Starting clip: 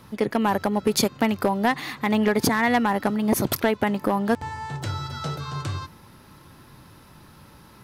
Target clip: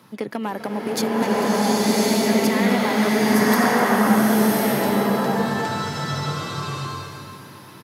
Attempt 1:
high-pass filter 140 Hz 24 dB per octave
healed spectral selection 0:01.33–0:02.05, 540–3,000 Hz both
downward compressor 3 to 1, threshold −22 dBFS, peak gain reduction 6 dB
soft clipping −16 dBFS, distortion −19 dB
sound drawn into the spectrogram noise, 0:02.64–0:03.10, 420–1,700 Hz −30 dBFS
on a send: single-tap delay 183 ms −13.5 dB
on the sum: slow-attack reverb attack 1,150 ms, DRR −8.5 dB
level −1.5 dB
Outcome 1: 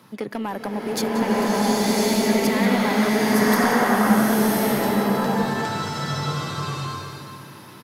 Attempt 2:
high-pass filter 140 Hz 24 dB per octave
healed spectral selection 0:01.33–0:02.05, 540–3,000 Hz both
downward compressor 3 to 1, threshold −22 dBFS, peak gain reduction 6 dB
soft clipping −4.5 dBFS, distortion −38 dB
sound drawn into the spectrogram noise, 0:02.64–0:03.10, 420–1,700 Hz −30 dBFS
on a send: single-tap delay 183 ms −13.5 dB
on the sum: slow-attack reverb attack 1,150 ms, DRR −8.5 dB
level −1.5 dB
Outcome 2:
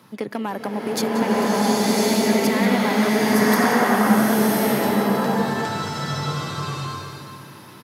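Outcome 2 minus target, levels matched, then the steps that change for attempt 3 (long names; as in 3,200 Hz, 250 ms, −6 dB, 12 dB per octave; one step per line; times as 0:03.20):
echo 69 ms early
change: single-tap delay 252 ms −13.5 dB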